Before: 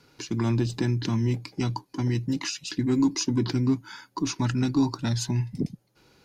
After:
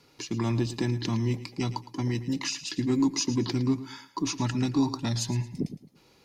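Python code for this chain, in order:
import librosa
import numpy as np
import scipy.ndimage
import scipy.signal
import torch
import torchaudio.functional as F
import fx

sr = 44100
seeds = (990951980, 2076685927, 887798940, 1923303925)

y = fx.low_shelf(x, sr, hz=260.0, db=-4.0)
y = fx.notch(y, sr, hz=1500.0, q=6.1)
y = fx.echo_feedback(y, sr, ms=111, feedback_pct=31, wet_db=-14.5)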